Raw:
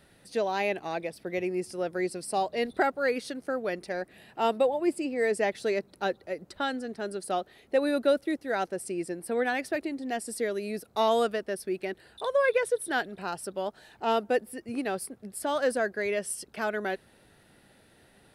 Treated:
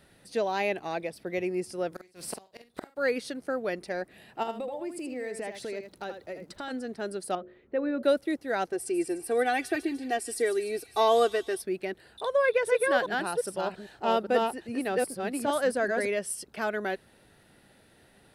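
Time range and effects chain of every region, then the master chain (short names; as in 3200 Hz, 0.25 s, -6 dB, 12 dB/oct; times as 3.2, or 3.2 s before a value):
1.92–2.96 spectral contrast lowered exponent 0.66 + flipped gate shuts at -22 dBFS, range -31 dB + doubler 47 ms -7.5 dB
4.42–6.7 compressor 4:1, threshold -34 dBFS + crackle 72/s -52 dBFS + echo 79 ms -8 dB
7.35–8.03 LPF 1500 Hz + bell 740 Hz -10.5 dB + de-hum 51.67 Hz, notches 13
8.72–11.62 comb 2.6 ms, depth 77% + thin delay 0.149 s, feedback 59%, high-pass 3000 Hz, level -10 dB
12.26–16.06 reverse delay 0.402 s, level -2 dB + high shelf 10000 Hz -4 dB
whole clip: dry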